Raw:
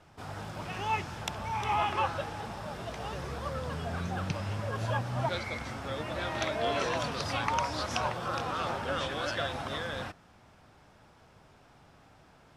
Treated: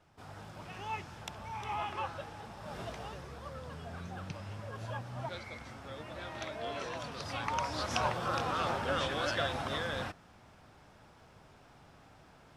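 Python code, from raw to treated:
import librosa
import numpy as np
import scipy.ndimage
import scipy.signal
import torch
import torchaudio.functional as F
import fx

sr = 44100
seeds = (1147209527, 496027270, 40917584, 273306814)

y = fx.gain(x, sr, db=fx.line((2.57, -8.0), (2.8, -1.5), (3.26, -9.0), (7.03, -9.0), (8.05, 0.0)))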